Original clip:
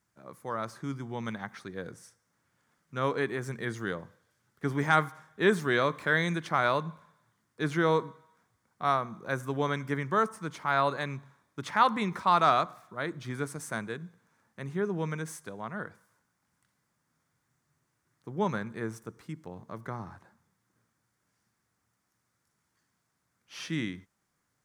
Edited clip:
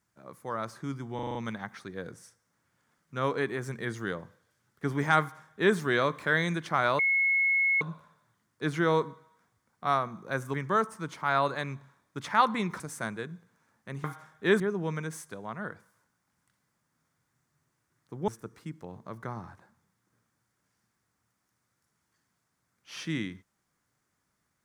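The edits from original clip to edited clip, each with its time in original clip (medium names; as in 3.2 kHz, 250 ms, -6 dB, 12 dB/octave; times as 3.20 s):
1.15 s: stutter 0.04 s, 6 plays
5.00–5.56 s: copy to 14.75 s
6.79 s: add tone 2.18 kHz -22 dBFS 0.82 s
9.52–9.96 s: delete
12.22–13.51 s: delete
18.43–18.91 s: delete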